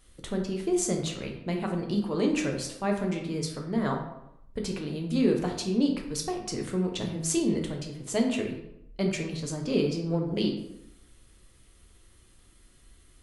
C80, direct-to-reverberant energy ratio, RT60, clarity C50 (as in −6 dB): 9.0 dB, 1.5 dB, 0.80 s, 6.0 dB